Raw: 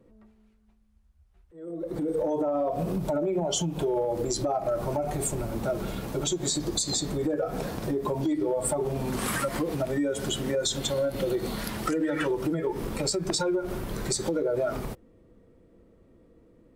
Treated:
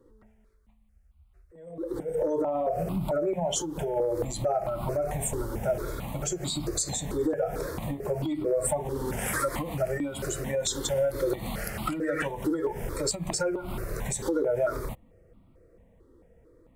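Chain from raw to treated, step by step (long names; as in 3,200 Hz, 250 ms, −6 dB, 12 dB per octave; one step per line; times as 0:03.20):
step-sequenced phaser 4.5 Hz 670–1,700 Hz
level +2.5 dB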